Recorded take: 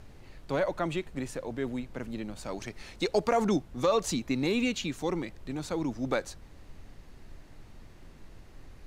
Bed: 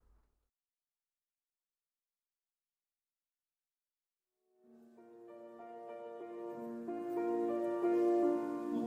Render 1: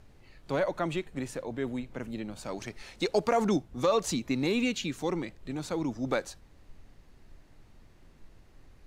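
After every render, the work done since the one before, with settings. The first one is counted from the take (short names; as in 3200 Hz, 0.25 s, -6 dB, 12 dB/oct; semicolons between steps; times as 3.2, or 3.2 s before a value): noise print and reduce 6 dB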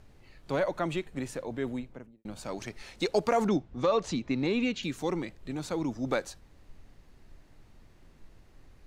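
1.68–2.25 studio fade out; 3.48–4.83 air absorption 110 m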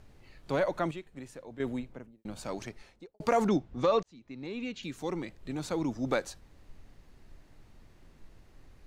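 0.91–1.6 gain -9.5 dB; 2.5–3.2 studio fade out; 4.03–5.63 fade in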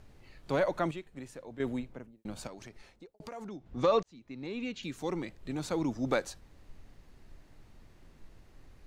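2.47–3.66 compressor 3:1, threshold -46 dBFS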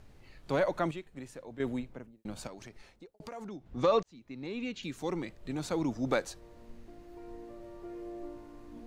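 add bed -12 dB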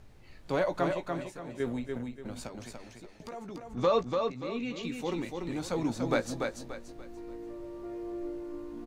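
doubler 17 ms -9 dB; feedback echo 0.29 s, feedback 33%, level -4.5 dB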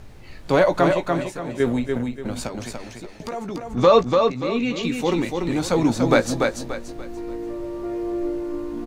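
gain +12 dB; limiter -3 dBFS, peak gain reduction 1.5 dB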